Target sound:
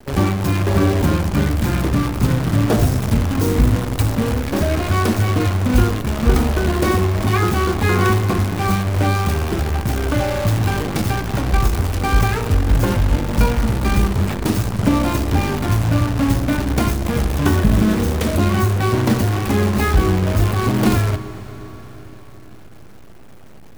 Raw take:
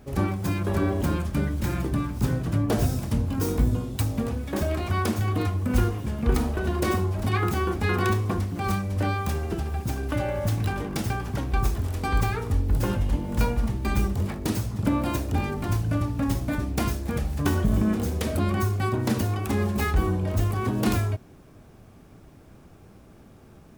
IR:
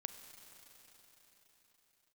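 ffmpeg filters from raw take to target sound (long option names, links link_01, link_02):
-filter_complex "[0:a]acrusher=bits=6:dc=4:mix=0:aa=0.000001,asplit=2[link_01][link_02];[1:a]atrim=start_sample=2205,highshelf=frequency=5000:gain=-11[link_03];[link_02][link_03]afir=irnorm=-1:irlink=0,volume=7dB[link_04];[link_01][link_04]amix=inputs=2:normalize=0"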